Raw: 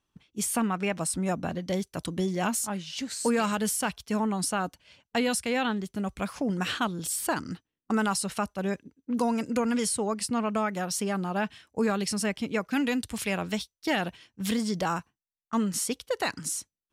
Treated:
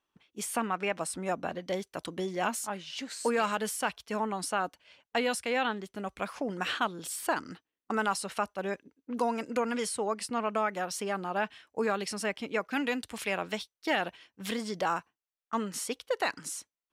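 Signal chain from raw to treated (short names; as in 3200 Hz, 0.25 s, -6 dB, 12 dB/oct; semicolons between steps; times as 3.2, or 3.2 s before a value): tone controls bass -14 dB, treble -7 dB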